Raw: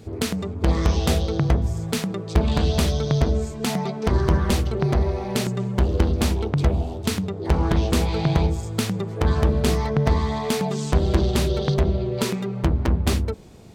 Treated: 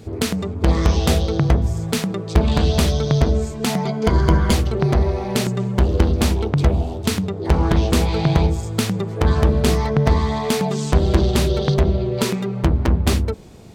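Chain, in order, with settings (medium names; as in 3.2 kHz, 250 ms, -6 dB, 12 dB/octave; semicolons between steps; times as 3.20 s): 3.83–4.54 s: rippled EQ curve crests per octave 1.8, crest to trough 8 dB; trim +3.5 dB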